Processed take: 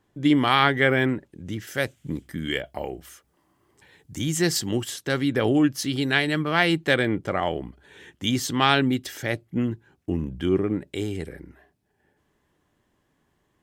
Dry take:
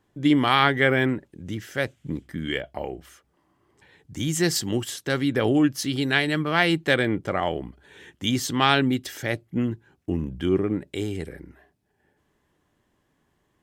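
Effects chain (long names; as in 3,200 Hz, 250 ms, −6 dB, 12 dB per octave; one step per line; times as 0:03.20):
0:01.67–0:04.19: high-shelf EQ 6,400 Hz +9.5 dB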